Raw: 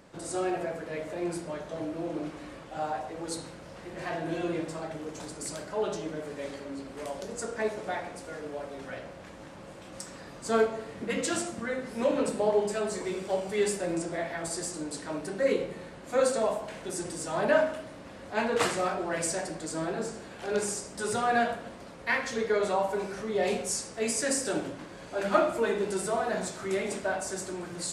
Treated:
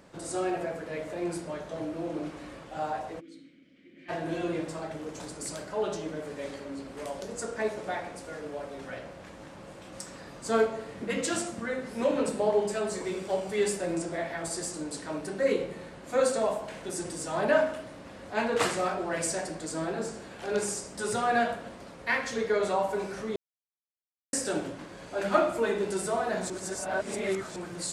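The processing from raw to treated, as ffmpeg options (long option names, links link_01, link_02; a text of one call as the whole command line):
ffmpeg -i in.wav -filter_complex "[0:a]asplit=3[link_01][link_02][link_03];[link_01]afade=type=out:start_time=3.19:duration=0.02[link_04];[link_02]asplit=3[link_05][link_06][link_07];[link_05]bandpass=frequency=270:width_type=q:width=8,volume=0dB[link_08];[link_06]bandpass=frequency=2290:width_type=q:width=8,volume=-6dB[link_09];[link_07]bandpass=frequency=3010:width_type=q:width=8,volume=-9dB[link_10];[link_08][link_09][link_10]amix=inputs=3:normalize=0,afade=type=in:start_time=3.19:duration=0.02,afade=type=out:start_time=4.08:duration=0.02[link_11];[link_03]afade=type=in:start_time=4.08:duration=0.02[link_12];[link_04][link_11][link_12]amix=inputs=3:normalize=0,asplit=5[link_13][link_14][link_15][link_16][link_17];[link_13]atrim=end=23.36,asetpts=PTS-STARTPTS,afade=type=out:start_time=23.356:duration=0.004:curve=hsin[link_18];[link_14]atrim=start=23.36:end=24.33,asetpts=PTS-STARTPTS,volume=0[link_19];[link_15]atrim=start=24.33:end=26.502,asetpts=PTS-STARTPTS,afade=type=in:duration=0.004:curve=hsin[link_20];[link_16]atrim=start=26.498:end=27.562,asetpts=PTS-STARTPTS,areverse[link_21];[link_17]atrim=start=27.558[link_22];[link_18][link_19][link_20]concat=n=3:v=0:a=1[link_23];[link_23][link_21]acrossfade=duration=0.004:curve1=hsin:curve2=hsin[link_24];[link_24][link_22]acrossfade=duration=0.004:curve1=hsin:curve2=hsin" out.wav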